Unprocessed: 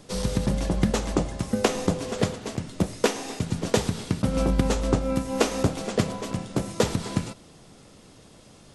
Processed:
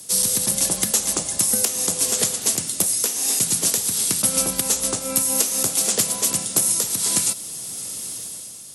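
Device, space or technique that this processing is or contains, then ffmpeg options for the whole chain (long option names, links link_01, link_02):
FM broadcast chain: -filter_complex "[0:a]highpass=frequency=75:width=0.5412,highpass=frequency=75:width=1.3066,dynaudnorm=framelen=120:gausssize=9:maxgain=10dB,acrossover=split=160|550[link_01][link_02][link_03];[link_01]acompressor=threshold=-35dB:ratio=4[link_04];[link_02]acompressor=threshold=-26dB:ratio=4[link_05];[link_03]acompressor=threshold=-26dB:ratio=4[link_06];[link_04][link_05][link_06]amix=inputs=3:normalize=0,aemphasis=mode=production:type=75fm,alimiter=limit=-9dB:level=0:latency=1:release=379,asoftclip=type=hard:threshold=-10.5dB,lowpass=frequency=15000:width=0.5412,lowpass=frequency=15000:width=1.3066,aemphasis=mode=production:type=75fm,volume=-3.5dB"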